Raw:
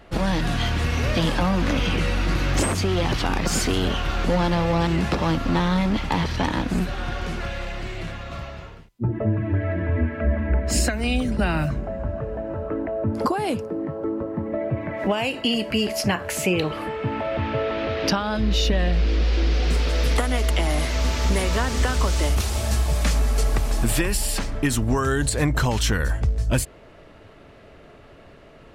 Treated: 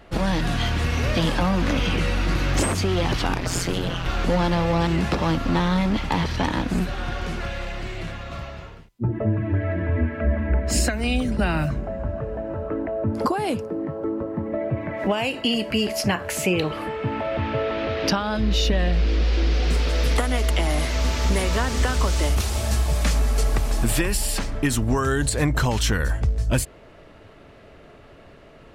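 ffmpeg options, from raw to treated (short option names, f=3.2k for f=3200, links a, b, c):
-filter_complex "[0:a]asettb=1/sr,asplit=3[a][b][c];[a]atrim=end=3.344[d];[b]atrim=start=3.34:end=4.06,asetpts=PTS-STARTPTS,afade=t=in:d=0.004:c=qsin,afade=t=out:st=0.716:d=0.004:c=qsin,aeval=exprs='val(0)*sin(2*PI*88*n/s)':c=same[e];[c]atrim=start=4.056[f];[d][e]acrossfade=d=0.004:c1=hsin:c2=qsin[g];[g][f]acrossfade=d=0.004:c1=qsin:c2=hsin"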